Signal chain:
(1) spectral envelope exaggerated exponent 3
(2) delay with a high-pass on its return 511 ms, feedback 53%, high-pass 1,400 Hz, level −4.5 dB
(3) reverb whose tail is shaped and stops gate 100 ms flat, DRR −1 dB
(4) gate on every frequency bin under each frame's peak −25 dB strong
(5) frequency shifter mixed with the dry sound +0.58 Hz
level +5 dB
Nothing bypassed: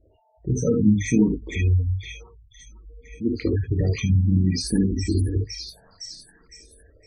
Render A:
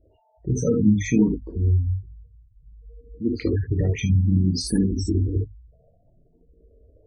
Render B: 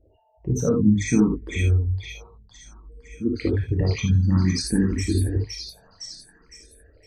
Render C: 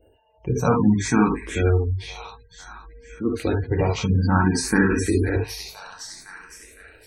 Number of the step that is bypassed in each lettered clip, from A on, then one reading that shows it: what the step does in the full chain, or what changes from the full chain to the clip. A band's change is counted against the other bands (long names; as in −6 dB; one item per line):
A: 2, change in momentary loudness spread −9 LU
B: 4, 8 kHz band +1.5 dB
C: 1, 2 kHz band +9.0 dB